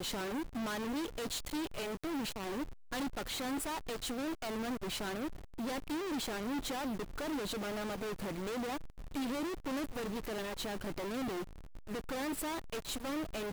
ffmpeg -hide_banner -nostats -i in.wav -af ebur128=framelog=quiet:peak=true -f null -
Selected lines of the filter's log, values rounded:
Integrated loudness:
  I:         -38.6 LUFS
  Threshold: -48.7 LUFS
Loudness range:
  LRA:         1.3 LU
  Threshold: -58.7 LUFS
  LRA low:   -39.4 LUFS
  LRA high:  -38.1 LUFS
True peak:
  Peak:      -28.7 dBFS